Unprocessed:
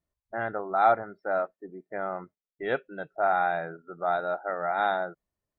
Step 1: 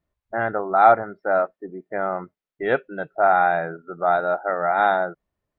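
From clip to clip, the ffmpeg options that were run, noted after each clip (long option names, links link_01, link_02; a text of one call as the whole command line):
ffmpeg -i in.wav -af "bass=frequency=250:gain=0,treble=frequency=4000:gain=-12,volume=7.5dB" out.wav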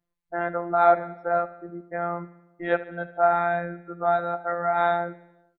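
ffmpeg -i in.wav -af "afftfilt=real='hypot(re,im)*cos(PI*b)':imag='0':win_size=1024:overlap=0.75,aecho=1:1:75|150|225|300|375|450:0.158|0.0951|0.0571|0.0342|0.0205|0.0123" out.wav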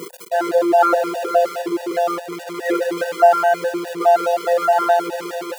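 ffmpeg -i in.wav -af "aeval=exprs='val(0)+0.5*0.0473*sgn(val(0))':channel_layout=same,highpass=frequency=410:width_type=q:width=4.9,afftfilt=real='re*gt(sin(2*PI*4.8*pts/sr)*(1-2*mod(floor(b*sr/1024/490),2)),0)':imag='im*gt(sin(2*PI*4.8*pts/sr)*(1-2*mod(floor(b*sr/1024/490),2)),0)':win_size=1024:overlap=0.75,volume=5dB" out.wav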